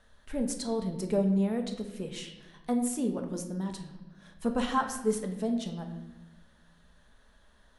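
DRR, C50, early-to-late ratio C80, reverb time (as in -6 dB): 4.0 dB, 8.0 dB, 10.0 dB, 1.0 s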